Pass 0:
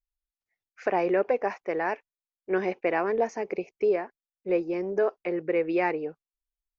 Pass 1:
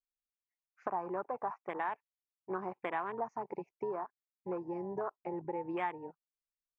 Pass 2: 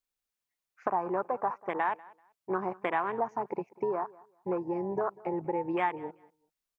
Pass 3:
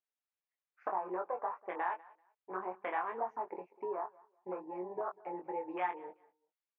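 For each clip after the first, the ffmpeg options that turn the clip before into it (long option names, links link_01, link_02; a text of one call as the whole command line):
ffmpeg -i in.wav -af "afwtdn=0.0251,equalizer=frequency=125:width_type=o:width=1:gain=4,equalizer=frequency=250:width_type=o:width=1:gain=-3,equalizer=frequency=500:width_type=o:width=1:gain=-10,equalizer=frequency=1000:width_type=o:width=1:gain=12,equalizer=frequency=4000:width_type=o:width=1:gain=-6,acompressor=threshold=-33dB:ratio=3,volume=-2.5dB" out.wav
ffmpeg -i in.wav -af "aecho=1:1:193|386:0.075|0.0157,volume=6.5dB" out.wav
ffmpeg -i in.wav -filter_complex "[0:a]flanger=delay=0.3:depth=6.6:regen=-35:speed=1.8:shape=sinusoidal,highpass=400,lowpass=2800,asplit=2[link_01][link_02];[link_02]adelay=22,volume=-5dB[link_03];[link_01][link_03]amix=inputs=2:normalize=0,volume=-3dB" out.wav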